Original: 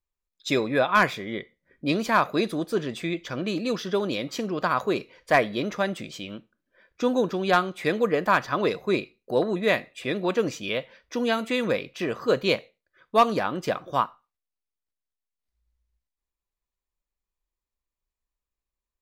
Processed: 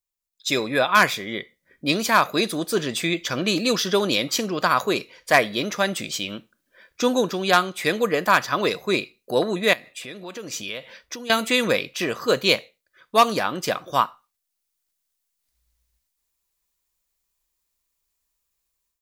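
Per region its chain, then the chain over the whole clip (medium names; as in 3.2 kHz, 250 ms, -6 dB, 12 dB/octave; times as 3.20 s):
9.73–11.30 s: compression 3:1, threshold -41 dBFS + tape noise reduction on one side only decoder only
whole clip: tone controls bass +3 dB, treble +4 dB; level rider; tilt EQ +2 dB/octave; trim -4 dB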